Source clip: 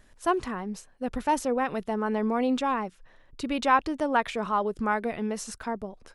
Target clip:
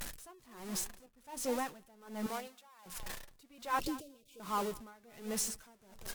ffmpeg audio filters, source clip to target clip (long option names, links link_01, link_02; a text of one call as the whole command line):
ffmpeg -i in.wav -filter_complex "[0:a]aeval=exprs='val(0)+0.5*0.0398*sgn(val(0))':channel_layout=same,aemphasis=mode=production:type=cd,asettb=1/sr,asplit=3[link_01][link_02][link_03];[link_01]atrim=end=1.064[link_04];[link_02]atrim=start=1.06:end=1.76,asetpts=PTS-STARTPTS,afade=type=in:duration=0.004:curve=qsin,afade=type=out:start_time=0.696:duration=0.004:curve=qsin,agate=range=-33dB:threshold=-24dB:ratio=3:detection=peak[link_05];[link_03]atrim=start=1.756[link_06];[link_04][link_05]acrossfade=duration=0.004:curve1=hsin:curve2=qsin[link_07];[link_07][link_06]acrossfade=duration=0.004:curve1=qsin:curve2=hsin,asettb=1/sr,asplit=3[link_08][link_09][link_10];[link_08]atrim=end=2.264[link_11];[link_09]atrim=start=2.26:end=2.86,asetpts=PTS-STARTPTS,afade=type=in:duration=0.004:curve=qsin,afade=type=out:start_time=0.596:duration=0.004:curve=qsin,highpass=710[link_12];[link_10]atrim=start=2.856[link_13];[link_11][link_12]acrossfade=duration=0.004:curve1=hsin:curve2=qsin[link_14];[link_14][link_13]acrossfade=duration=0.004:curve1=qsin:curve2=hsin,flanger=delay=5.6:depth=2.8:regen=-54:speed=1.1:shape=sinusoidal,asettb=1/sr,asplit=3[link_15][link_16][link_17];[link_15]atrim=end=3.804[link_18];[link_16]atrim=start=3.8:end=4.4,asetpts=PTS-STARTPTS,afade=type=in:duration=0.004:curve=qsin,afade=type=out:start_time=0.596:duration=0.004:curve=qsin,asuperstop=centerf=1200:order=12:qfactor=0.59[link_19];[link_17]atrim=start=4.396[link_20];[link_18][link_19]acrossfade=duration=0.004:curve1=hsin:curve2=qsin[link_21];[link_21][link_20]acrossfade=duration=0.004:curve1=qsin:curve2=hsin,aecho=1:1:209|418|627:0.158|0.0618|0.0241,aeval=exprs='val(0)*pow(10,-27*(0.5-0.5*cos(2*PI*1.3*n/s))/20)':channel_layout=same,volume=-5dB" out.wav